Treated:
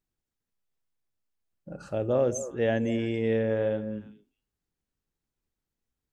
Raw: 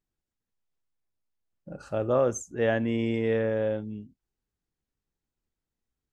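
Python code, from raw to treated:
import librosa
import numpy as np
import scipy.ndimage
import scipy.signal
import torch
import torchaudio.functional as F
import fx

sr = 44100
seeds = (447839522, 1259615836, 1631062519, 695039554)

p1 = fx.peak_eq(x, sr, hz=1200.0, db=-9.0, octaves=0.75, at=(1.93, 3.5))
y = p1 + fx.echo_stepped(p1, sr, ms=102, hz=180.0, octaves=1.4, feedback_pct=70, wet_db=-8.5, dry=0)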